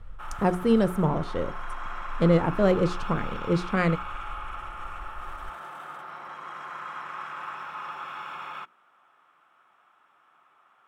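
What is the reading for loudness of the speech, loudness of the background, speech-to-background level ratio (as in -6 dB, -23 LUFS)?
-25.5 LUFS, -38.0 LUFS, 12.5 dB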